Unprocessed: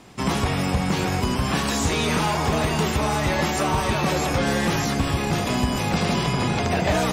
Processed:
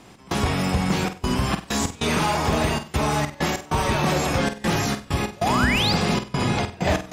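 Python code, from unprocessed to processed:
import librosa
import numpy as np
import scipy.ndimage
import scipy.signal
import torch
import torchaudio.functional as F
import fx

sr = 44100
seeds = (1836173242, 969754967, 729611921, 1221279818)

y = fx.spec_paint(x, sr, seeds[0], shape='rise', start_s=5.36, length_s=0.57, low_hz=520.0, high_hz=5100.0, level_db=-24.0)
y = fx.step_gate(y, sr, bpm=97, pattern='x.xxxxx.xx.', floor_db=-24.0, edge_ms=4.5)
y = fx.room_flutter(y, sr, wall_m=8.2, rt60_s=0.3)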